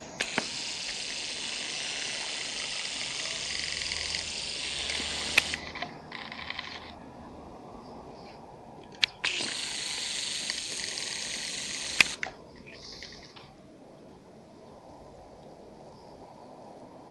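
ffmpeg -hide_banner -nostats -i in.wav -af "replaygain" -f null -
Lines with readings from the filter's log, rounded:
track_gain = +13.6 dB
track_peak = 0.476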